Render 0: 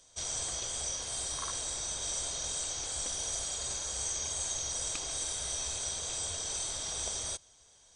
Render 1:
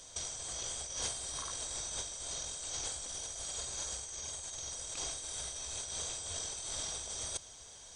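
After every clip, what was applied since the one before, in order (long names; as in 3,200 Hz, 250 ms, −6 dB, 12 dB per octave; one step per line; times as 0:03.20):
compressor whose output falls as the input rises −41 dBFS, ratio −0.5
level +2 dB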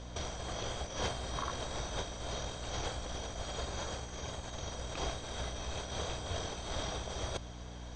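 Gaussian smoothing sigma 1.7 samples
mains hum 60 Hz, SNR 10 dB
high-shelf EQ 2,700 Hz −10.5 dB
level +10.5 dB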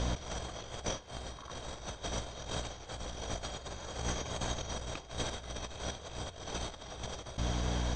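compressor whose output falls as the input rises −45 dBFS, ratio −0.5
level +7 dB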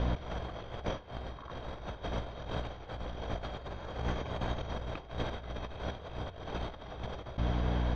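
high-frequency loss of the air 360 metres
level +3 dB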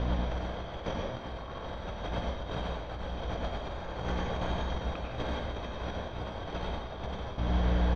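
single-tap delay 1,058 ms −13 dB
dense smooth reverb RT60 0.74 s, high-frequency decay 0.85×, pre-delay 80 ms, DRR −0.5 dB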